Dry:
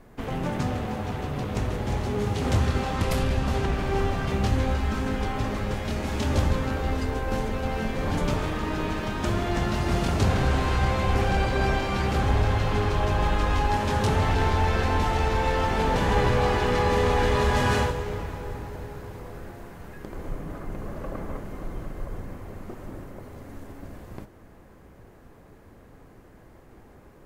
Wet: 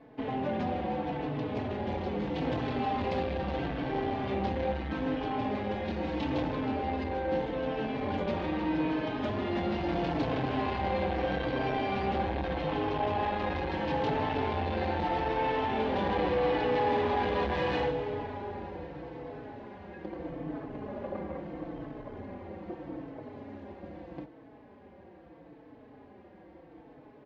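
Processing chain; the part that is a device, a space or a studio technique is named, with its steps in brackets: barber-pole flanger into a guitar amplifier (endless flanger 4.1 ms -0.78 Hz; saturation -25.5 dBFS, distortion -11 dB; cabinet simulation 96–3900 Hz, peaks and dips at 110 Hz -7 dB, 300 Hz +7 dB, 530 Hz +5 dB, 790 Hz +5 dB, 1.3 kHz -6 dB)

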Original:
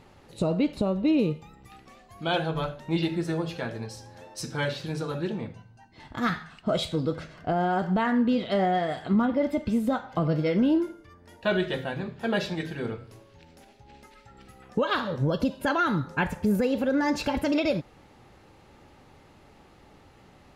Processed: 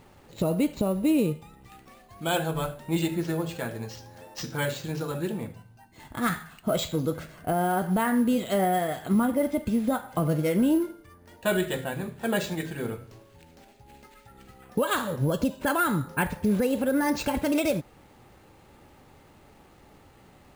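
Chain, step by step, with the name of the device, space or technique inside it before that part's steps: early companding sampler (sample-rate reducer 11 kHz, jitter 0%; companded quantiser 8-bit)

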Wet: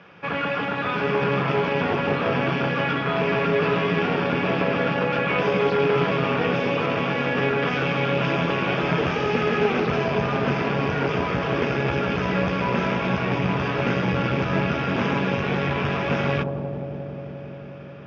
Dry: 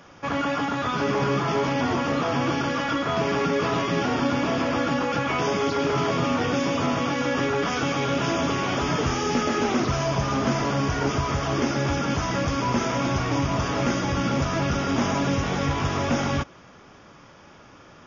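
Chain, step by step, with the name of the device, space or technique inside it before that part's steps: analogue delay pedal into a guitar amplifier (bucket-brigade echo 177 ms, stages 1024, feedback 83%, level -6.5 dB; valve stage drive 13 dB, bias 0.7; cabinet simulation 100–4100 Hz, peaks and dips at 180 Hz +8 dB, 270 Hz -6 dB, 440 Hz +6 dB, 1.6 kHz +5 dB, 2.5 kHz +9 dB); trim +2 dB

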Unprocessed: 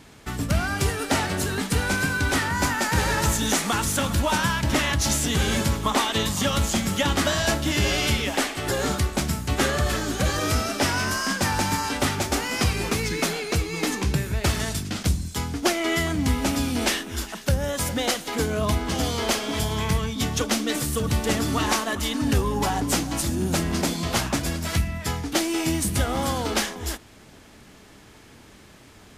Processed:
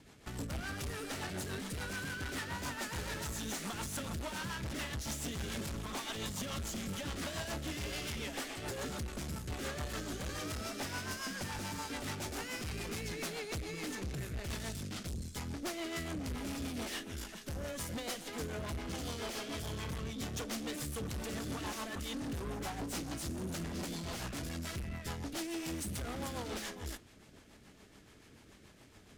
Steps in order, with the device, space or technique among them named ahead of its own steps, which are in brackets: overdriven rotary cabinet (valve stage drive 31 dB, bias 0.65; rotary cabinet horn 7 Hz); trim -4.5 dB

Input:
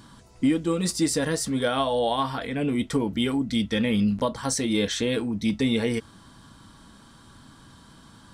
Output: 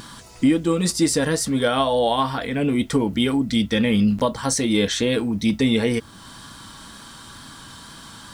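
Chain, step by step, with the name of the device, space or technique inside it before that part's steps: noise-reduction cassette on a plain deck (tape noise reduction on one side only encoder only; wow and flutter 22 cents; white noise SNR 42 dB); trim +4.5 dB

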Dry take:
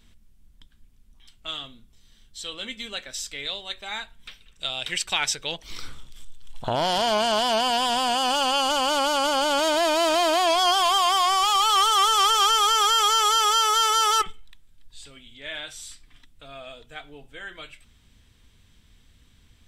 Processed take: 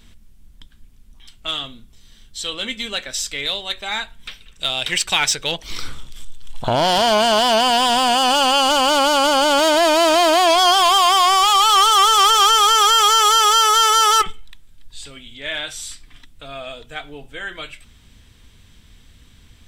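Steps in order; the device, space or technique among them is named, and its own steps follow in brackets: parallel distortion (in parallel at -4.5 dB: hard clipper -25.5 dBFS, distortion -8 dB); on the sum: trim +4.5 dB

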